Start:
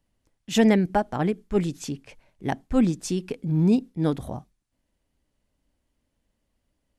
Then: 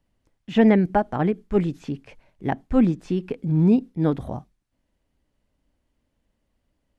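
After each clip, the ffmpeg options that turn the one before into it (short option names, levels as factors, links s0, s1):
-filter_complex "[0:a]acrossover=split=3100[s0][s1];[s1]acompressor=threshold=0.002:ratio=4:attack=1:release=60[s2];[s0][s2]amix=inputs=2:normalize=0,highshelf=f=5000:g=-8,volume=1.33"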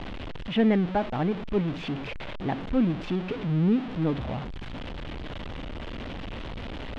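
-af "aeval=exprs='val(0)+0.5*0.0794*sgn(val(0))':c=same,lowpass=f=3300:t=q:w=2.2,highshelf=f=2400:g=-9.5,volume=0.447"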